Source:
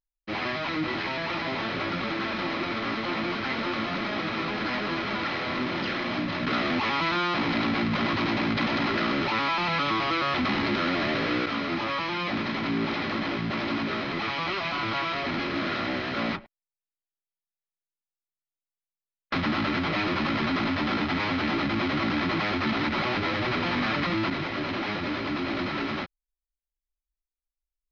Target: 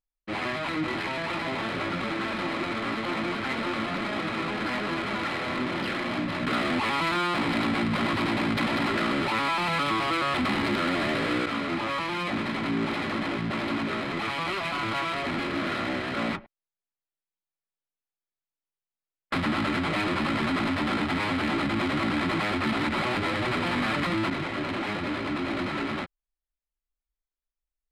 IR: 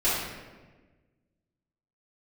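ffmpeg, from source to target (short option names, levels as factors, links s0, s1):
-af "adynamicsmooth=sensitivity=5:basefreq=3300"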